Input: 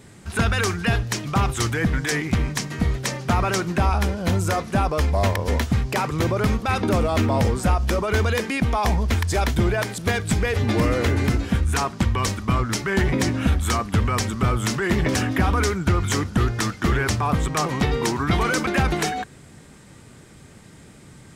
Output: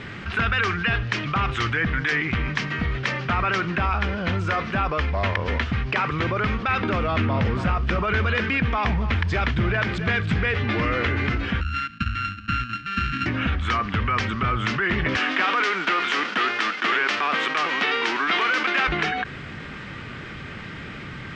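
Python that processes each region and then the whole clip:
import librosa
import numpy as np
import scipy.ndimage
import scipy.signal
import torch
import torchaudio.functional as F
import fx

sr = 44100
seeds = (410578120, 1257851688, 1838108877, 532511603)

y = fx.chain(x, sr, fx.peak_eq(hz=140.0, db=7.0, octaves=1.5),
    fx.echo_single(ms=278, db=-13.5),
    fx.doppler_dist(depth_ms=0.12), at=(7.07, 10.56))
y = fx.chain(y, sr, fx.sample_sort(block=32),
    fx.cheby1_bandstop(low_hz=290.0, high_hz=1400.0, order=3),
    fx.upward_expand(threshold_db=-34.0, expansion=2.5), at=(11.61, 13.26))
y = fx.envelope_flatten(y, sr, power=0.6, at=(15.16, 18.87), fade=0.02)
y = fx.highpass(y, sr, hz=250.0, slope=24, at=(15.16, 18.87), fade=0.02)
y = scipy.signal.sosfilt(scipy.signal.butter(4, 4700.0, 'lowpass', fs=sr, output='sos'), y)
y = fx.band_shelf(y, sr, hz=1900.0, db=9.0, octaves=1.7)
y = fx.env_flatten(y, sr, amount_pct=50)
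y = y * 10.0 ** (-8.0 / 20.0)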